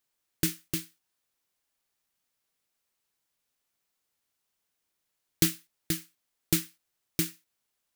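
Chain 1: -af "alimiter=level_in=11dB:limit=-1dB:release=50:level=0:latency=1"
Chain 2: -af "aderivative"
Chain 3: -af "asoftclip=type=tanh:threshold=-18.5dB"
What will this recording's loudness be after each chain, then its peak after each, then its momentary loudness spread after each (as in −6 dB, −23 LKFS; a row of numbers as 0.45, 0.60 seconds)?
−21.5, −28.5, −33.0 LKFS; −1.0, −7.0, −18.5 dBFS; 11, 12, 11 LU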